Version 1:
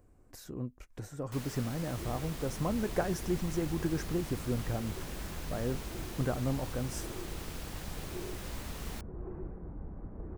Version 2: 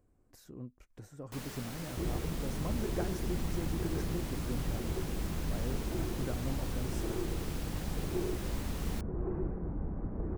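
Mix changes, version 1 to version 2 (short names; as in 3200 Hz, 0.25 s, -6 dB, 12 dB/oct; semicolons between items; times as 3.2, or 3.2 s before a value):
speech -8.5 dB; second sound +5.5 dB; master: add bell 220 Hz +2.5 dB 1.9 oct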